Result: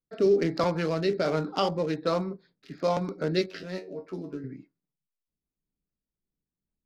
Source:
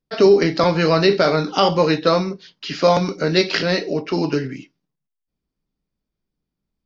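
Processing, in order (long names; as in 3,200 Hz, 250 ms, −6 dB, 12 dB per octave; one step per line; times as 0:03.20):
adaptive Wiener filter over 15 samples
rotating-speaker cabinet horn 1.2 Hz, later 5 Hz, at 0:04.73
0:03.46–0:04.44: tuned comb filter 93 Hz, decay 0.18 s, harmonics all, mix 90%
level −8 dB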